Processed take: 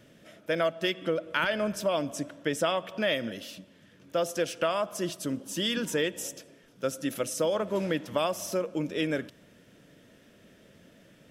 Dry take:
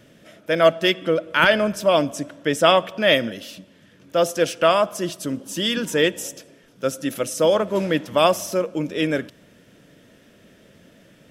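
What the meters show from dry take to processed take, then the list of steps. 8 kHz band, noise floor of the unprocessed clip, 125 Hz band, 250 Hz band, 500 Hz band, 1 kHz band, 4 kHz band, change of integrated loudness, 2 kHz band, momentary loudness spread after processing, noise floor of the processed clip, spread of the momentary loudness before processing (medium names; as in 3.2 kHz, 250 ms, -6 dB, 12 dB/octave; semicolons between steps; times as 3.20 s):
-6.0 dB, -53 dBFS, -7.5 dB, -7.5 dB, -10.0 dB, -11.0 dB, -10.0 dB, -9.5 dB, -10.0 dB, 8 LU, -58 dBFS, 11 LU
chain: compression 5:1, threshold -19 dBFS, peak gain reduction 9.5 dB; trim -5 dB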